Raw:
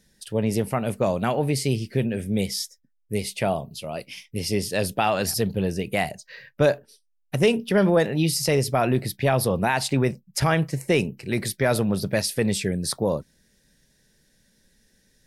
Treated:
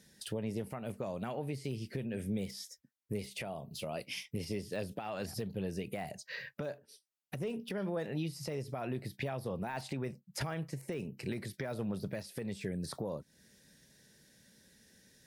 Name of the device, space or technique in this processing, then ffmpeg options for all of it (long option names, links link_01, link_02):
podcast mastering chain: -af "highpass=81,deesser=0.85,acompressor=threshold=-34dB:ratio=3,alimiter=level_in=3.5dB:limit=-24dB:level=0:latency=1:release=447,volume=-3.5dB,volume=1dB" -ar 44100 -c:a libmp3lame -b:a 96k